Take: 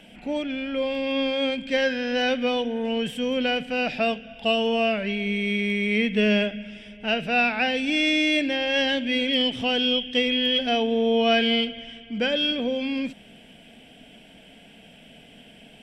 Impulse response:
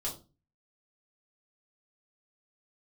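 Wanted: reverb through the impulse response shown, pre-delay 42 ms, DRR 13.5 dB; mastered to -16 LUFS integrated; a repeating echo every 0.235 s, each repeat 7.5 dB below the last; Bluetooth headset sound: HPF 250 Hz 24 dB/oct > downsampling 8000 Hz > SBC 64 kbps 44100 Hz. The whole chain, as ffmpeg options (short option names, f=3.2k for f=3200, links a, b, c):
-filter_complex "[0:a]aecho=1:1:235|470|705|940|1175:0.422|0.177|0.0744|0.0312|0.0131,asplit=2[a][b];[1:a]atrim=start_sample=2205,adelay=42[c];[b][c]afir=irnorm=-1:irlink=0,volume=-15.5dB[d];[a][d]amix=inputs=2:normalize=0,highpass=f=250:w=0.5412,highpass=f=250:w=1.3066,aresample=8000,aresample=44100,volume=7dB" -ar 44100 -c:a sbc -b:a 64k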